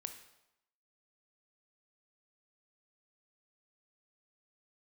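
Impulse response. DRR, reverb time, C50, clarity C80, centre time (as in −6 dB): 7.0 dB, 0.85 s, 9.0 dB, 12.0 dB, 15 ms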